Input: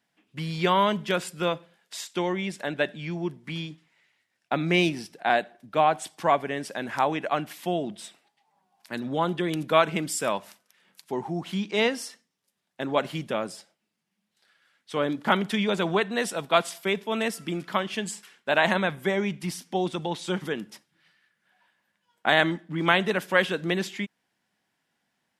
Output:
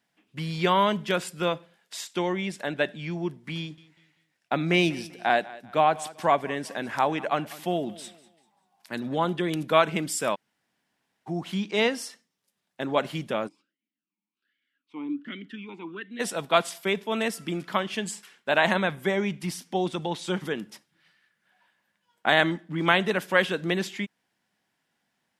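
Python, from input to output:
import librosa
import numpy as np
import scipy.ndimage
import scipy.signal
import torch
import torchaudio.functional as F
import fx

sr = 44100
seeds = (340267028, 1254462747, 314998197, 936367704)

y = fx.echo_feedback(x, sr, ms=195, feedback_pct=33, wet_db=-19.5, at=(3.58, 9.27))
y = fx.vowel_sweep(y, sr, vowels='i-u', hz=1.3, at=(13.47, 16.19), fade=0.02)
y = fx.edit(y, sr, fx.room_tone_fill(start_s=10.35, length_s=0.92, crossfade_s=0.02), tone=tone)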